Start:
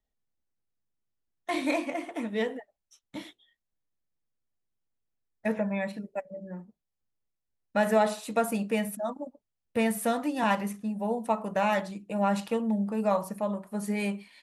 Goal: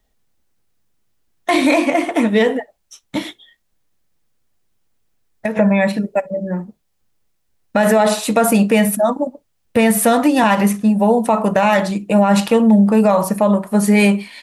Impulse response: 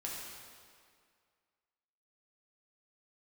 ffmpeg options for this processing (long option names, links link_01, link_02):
-filter_complex "[0:a]asplit=3[link_01][link_02][link_03];[link_01]afade=type=out:start_time=3.18:duration=0.02[link_04];[link_02]acompressor=threshold=-36dB:ratio=16,afade=type=in:start_time=3.18:duration=0.02,afade=type=out:start_time=5.55:duration=0.02[link_05];[link_03]afade=type=in:start_time=5.55:duration=0.02[link_06];[link_04][link_05][link_06]amix=inputs=3:normalize=0,asplit=2[link_07][link_08];[1:a]atrim=start_sample=2205,atrim=end_sample=3087[link_09];[link_08][link_09]afir=irnorm=-1:irlink=0,volume=-18.5dB[link_10];[link_07][link_10]amix=inputs=2:normalize=0,alimiter=level_in=21.5dB:limit=-1dB:release=50:level=0:latency=1,volume=-4dB"